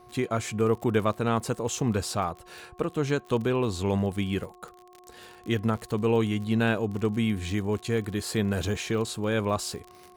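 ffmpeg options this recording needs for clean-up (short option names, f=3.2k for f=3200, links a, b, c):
-af "adeclick=t=4,bandreject=f=361:t=h:w=4,bandreject=f=722:t=h:w=4,bandreject=f=1.083k:t=h:w=4"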